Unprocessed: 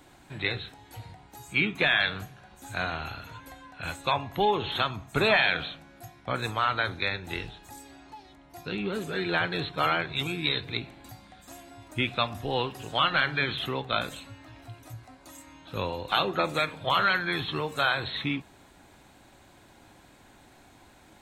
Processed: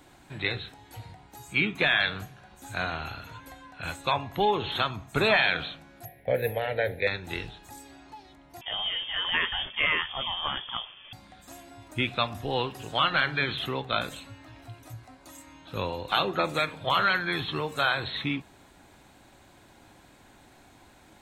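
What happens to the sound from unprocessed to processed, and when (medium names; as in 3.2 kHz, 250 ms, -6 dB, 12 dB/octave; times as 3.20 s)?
6.05–7.07 s: FFT filter 140 Hz 0 dB, 340 Hz -5 dB, 490 Hz +14 dB, 820 Hz -2 dB, 1.2 kHz -26 dB, 1.8 kHz +5 dB, 3.7 kHz -10 dB, 7.8 kHz -28 dB, 11 kHz +15 dB
8.61–11.13 s: frequency inversion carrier 3.4 kHz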